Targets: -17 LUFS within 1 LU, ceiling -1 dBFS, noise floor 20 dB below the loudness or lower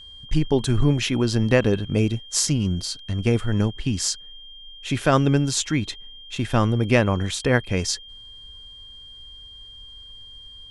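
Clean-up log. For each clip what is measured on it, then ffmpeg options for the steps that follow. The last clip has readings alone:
steady tone 3200 Hz; tone level -41 dBFS; loudness -22.5 LUFS; peak -2.0 dBFS; loudness target -17.0 LUFS
-> -af "bandreject=f=3.2k:w=30"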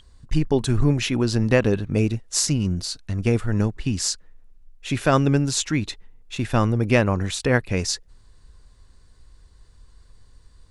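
steady tone none; loudness -22.5 LUFS; peak -2.0 dBFS; loudness target -17.0 LUFS
-> -af "volume=5.5dB,alimiter=limit=-1dB:level=0:latency=1"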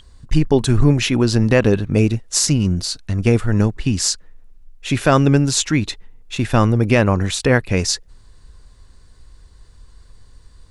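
loudness -17.5 LUFS; peak -1.0 dBFS; noise floor -47 dBFS

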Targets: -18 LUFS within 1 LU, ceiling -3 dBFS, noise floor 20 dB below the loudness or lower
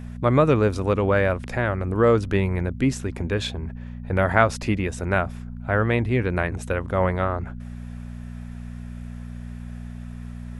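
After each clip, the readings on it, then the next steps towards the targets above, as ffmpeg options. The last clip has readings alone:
hum 60 Hz; harmonics up to 240 Hz; hum level -33 dBFS; loudness -23.0 LUFS; peak -3.0 dBFS; loudness target -18.0 LUFS
-> -af "bandreject=f=60:t=h:w=4,bandreject=f=120:t=h:w=4,bandreject=f=180:t=h:w=4,bandreject=f=240:t=h:w=4"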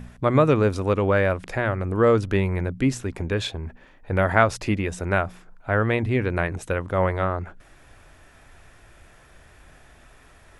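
hum none; loudness -23.0 LUFS; peak -3.0 dBFS; loudness target -18.0 LUFS
-> -af "volume=5dB,alimiter=limit=-3dB:level=0:latency=1"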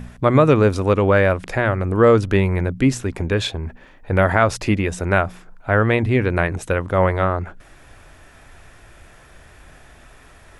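loudness -18.5 LUFS; peak -3.0 dBFS; noise floor -47 dBFS

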